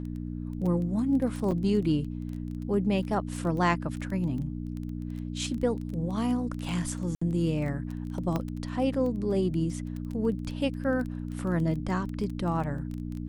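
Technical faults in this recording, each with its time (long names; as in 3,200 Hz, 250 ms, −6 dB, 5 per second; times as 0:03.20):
surface crackle 14 per second −33 dBFS
mains hum 60 Hz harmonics 5 −35 dBFS
0:01.51–0:01.52: drop-out 6 ms
0:07.15–0:07.21: drop-out 65 ms
0:08.36: click −17 dBFS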